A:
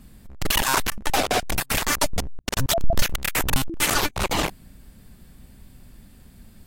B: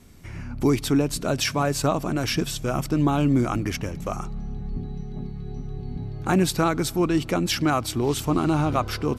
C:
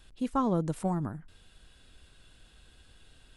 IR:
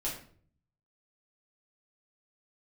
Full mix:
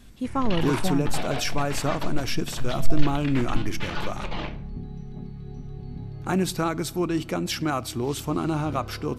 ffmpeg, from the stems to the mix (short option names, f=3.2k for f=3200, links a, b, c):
-filter_complex "[0:a]lowpass=f=4k:w=0.5412,lowpass=f=4k:w=1.3066,volume=-13.5dB,asplit=2[a][b];[b]volume=-4.5dB[c];[1:a]volume=-4.5dB,asplit=2[d][e];[e]volume=-20dB[f];[2:a]volume=2dB[g];[3:a]atrim=start_sample=2205[h];[c][f]amix=inputs=2:normalize=0[i];[i][h]afir=irnorm=-1:irlink=0[j];[a][d][g][j]amix=inputs=4:normalize=0"